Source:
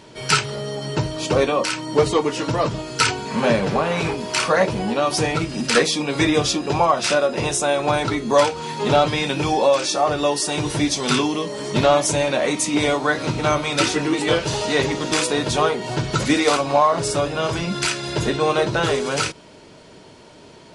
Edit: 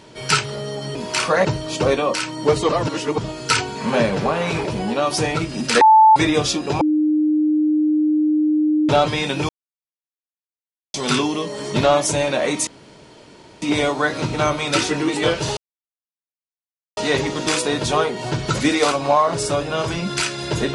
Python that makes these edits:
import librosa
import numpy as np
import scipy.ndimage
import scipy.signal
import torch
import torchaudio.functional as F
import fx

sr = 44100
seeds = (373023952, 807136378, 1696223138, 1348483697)

y = fx.edit(x, sr, fx.reverse_span(start_s=2.19, length_s=0.49),
    fx.move(start_s=4.15, length_s=0.5, to_s=0.95),
    fx.bleep(start_s=5.81, length_s=0.35, hz=876.0, db=-6.5),
    fx.bleep(start_s=6.81, length_s=2.08, hz=305.0, db=-14.0),
    fx.silence(start_s=9.49, length_s=1.45),
    fx.insert_room_tone(at_s=12.67, length_s=0.95),
    fx.insert_silence(at_s=14.62, length_s=1.4), tone=tone)